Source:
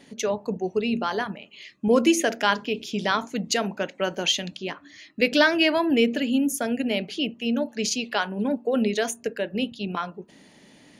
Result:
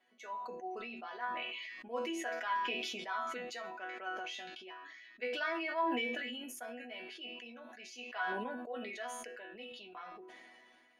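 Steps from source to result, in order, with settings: three-band isolator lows -20 dB, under 560 Hz, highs -16 dB, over 2500 Hz; resonator bank B3 sus4, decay 0.27 s; sustainer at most 24 dB/s; gain +4 dB

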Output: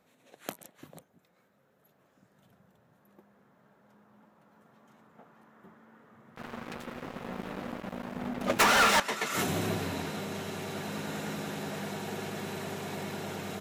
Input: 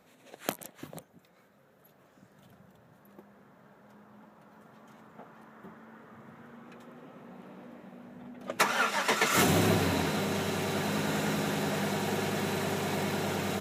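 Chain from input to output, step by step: 6.36–9 sample leveller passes 5; gain -6 dB

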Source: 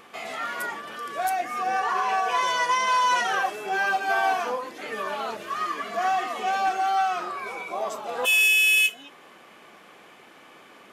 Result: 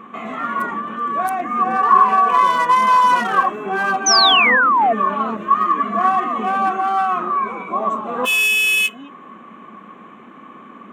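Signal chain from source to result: Wiener smoothing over 9 samples; small resonant body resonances 220/1100 Hz, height 17 dB, ringing for 35 ms; painted sound fall, 4.06–4.93, 650–6300 Hz -17 dBFS; gain +3 dB

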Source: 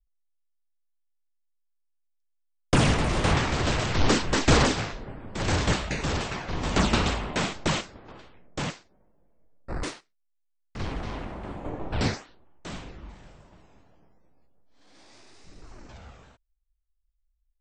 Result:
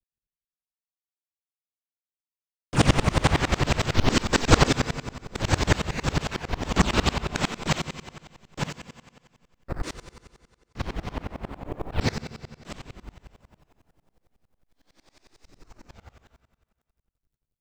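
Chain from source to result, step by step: G.711 law mismatch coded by A; on a send at -10 dB: reverb RT60 1.7 s, pre-delay 99 ms; on the sum: dB-ramp tremolo swelling 11 Hz, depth 26 dB; gain +9 dB

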